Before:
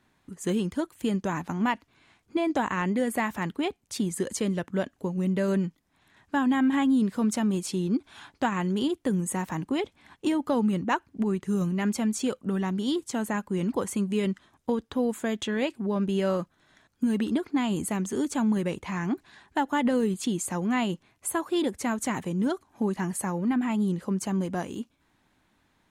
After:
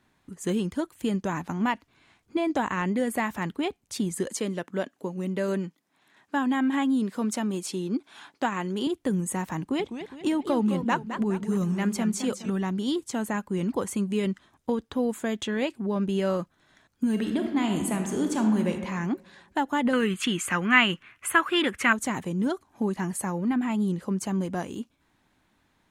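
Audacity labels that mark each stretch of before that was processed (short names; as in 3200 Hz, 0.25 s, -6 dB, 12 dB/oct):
4.270000	8.870000	HPF 220 Hz
9.590000	12.500000	warbling echo 0.207 s, feedback 44%, depth 215 cents, level -9 dB
17.090000	18.700000	reverb throw, RT60 1.3 s, DRR 4 dB
19.930000	21.930000	band shelf 1900 Hz +15 dB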